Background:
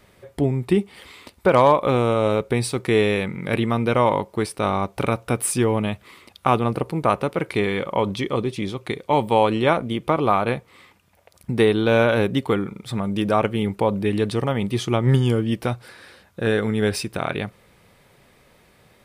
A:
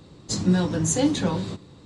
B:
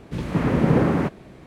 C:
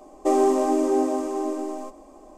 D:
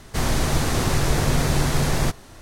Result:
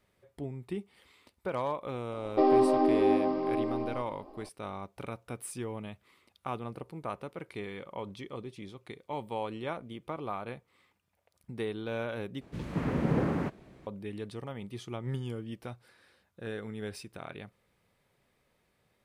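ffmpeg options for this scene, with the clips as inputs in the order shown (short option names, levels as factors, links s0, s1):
-filter_complex "[0:a]volume=0.126[s0];[3:a]aresample=11025,aresample=44100[s1];[s0]asplit=2[s2][s3];[s2]atrim=end=12.414[s4];[2:a]atrim=end=1.46,asetpts=PTS-STARTPTS,volume=0.316[s5];[s3]atrim=start=13.866[s6];[s1]atrim=end=2.37,asetpts=PTS-STARTPTS,volume=0.668,afade=t=in:d=0.004:c=hsin,afade=t=out:st=2.366:d=0.004:c=hsin,adelay=2120[s7];[s4][s5]acrossfade=d=0.004:c1=hsin:c2=hsin[s8];[s8][s6]acrossfade=d=0.004:c1=hsin:c2=hsin[s9];[s9][s7]amix=inputs=2:normalize=0"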